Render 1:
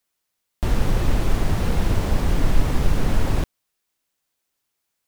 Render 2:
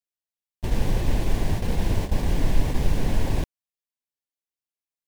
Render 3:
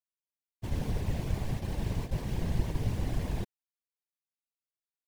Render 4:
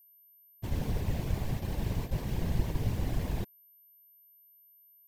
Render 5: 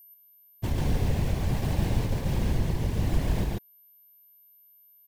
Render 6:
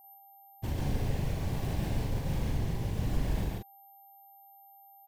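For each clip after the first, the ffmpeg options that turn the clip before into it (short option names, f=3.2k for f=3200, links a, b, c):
-af "agate=range=-17dB:threshold=-20dB:ratio=16:detection=peak,equalizer=f=1.3k:w=5.7:g=-13.5,volume=-2.5dB"
-af "afftfilt=real='hypot(re,im)*cos(2*PI*random(0))':imag='hypot(re,im)*sin(2*PI*random(1))':win_size=512:overlap=0.75,volume=-3.5dB"
-af "aeval=exprs='val(0)+0.00126*sin(2*PI*13000*n/s)':c=same"
-filter_complex "[0:a]alimiter=level_in=1dB:limit=-24dB:level=0:latency=1:release=390,volume=-1dB,asplit=2[a][b];[b]aecho=0:1:105|139.9:0.355|0.794[c];[a][c]amix=inputs=2:normalize=0,volume=7.5dB"
-filter_complex "[0:a]aeval=exprs='val(0)+0.00251*sin(2*PI*790*n/s)':c=same,asplit=2[a][b];[b]adelay=42,volume=-4dB[c];[a][c]amix=inputs=2:normalize=0,volume=-6.5dB"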